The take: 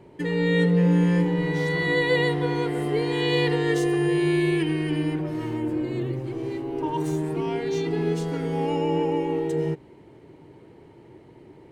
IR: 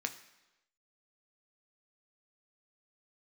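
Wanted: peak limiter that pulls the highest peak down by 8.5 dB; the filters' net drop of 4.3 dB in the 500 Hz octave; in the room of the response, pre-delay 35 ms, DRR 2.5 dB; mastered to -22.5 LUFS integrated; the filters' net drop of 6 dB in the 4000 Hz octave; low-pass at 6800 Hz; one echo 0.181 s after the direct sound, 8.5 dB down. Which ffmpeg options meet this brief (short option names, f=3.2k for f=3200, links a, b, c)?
-filter_complex "[0:a]lowpass=6.8k,equalizer=f=500:t=o:g=-5.5,equalizer=f=4k:t=o:g=-8,alimiter=limit=-20.5dB:level=0:latency=1,aecho=1:1:181:0.376,asplit=2[a][b];[1:a]atrim=start_sample=2205,adelay=35[c];[b][c]afir=irnorm=-1:irlink=0,volume=-4.5dB[d];[a][d]amix=inputs=2:normalize=0,volume=4.5dB"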